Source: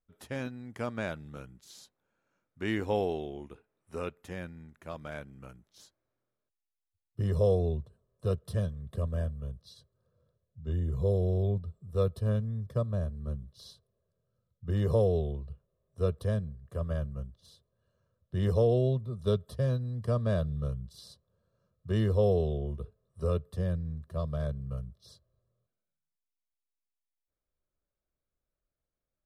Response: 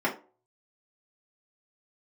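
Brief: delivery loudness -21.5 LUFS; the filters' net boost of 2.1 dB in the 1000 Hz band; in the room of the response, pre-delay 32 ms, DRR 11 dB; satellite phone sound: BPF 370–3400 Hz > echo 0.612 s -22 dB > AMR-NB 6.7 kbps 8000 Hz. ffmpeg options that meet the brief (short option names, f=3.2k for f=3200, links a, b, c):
-filter_complex "[0:a]equalizer=f=1k:t=o:g=3.5,asplit=2[a][b];[1:a]atrim=start_sample=2205,adelay=32[c];[b][c]afir=irnorm=-1:irlink=0,volume=-23dB[d];[a][d]amix=inputs=2:normalize=0,highpass=370,lowpass=3.4k,aecho=1:1:612:0.0794,volume=14.5dB" -ar 8000 -c:a libopencore_amrnb -b:a 6700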